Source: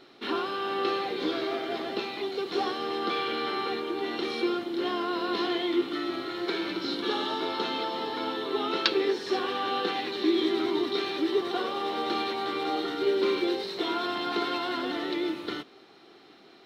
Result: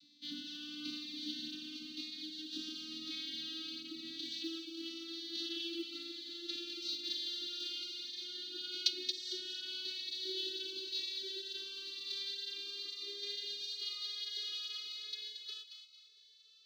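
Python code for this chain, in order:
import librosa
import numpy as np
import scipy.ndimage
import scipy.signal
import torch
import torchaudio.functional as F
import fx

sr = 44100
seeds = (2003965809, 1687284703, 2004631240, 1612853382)

p1 = fx.vocoder_glide(x, sr, note=62, semitones=7)
p2 = scipy.signal.sosfilt(scipy.signal.ellip(3, 1.0, 80, [150.0, 3600.0], 'bandstop', fs=sr, output='sos'), p1)
p3 = fx.peak_eq(p2, sr, hz=1300.0, db=14.5, octaves=0.6)
p4 = fx.quant_float(p3, sr, bits=4)
p5 = p4 + fx.echo_wet_highpass(p4, sr, ms=227, feedback_pct=37, hz=1900.0, wet_db=-6.5, dry=0)
p6 = fx.notch_cascade(p5, sr, direction='falling', hz=1.0)
y = F.gain(torch.from_numpy(p6), 11.5).numpy()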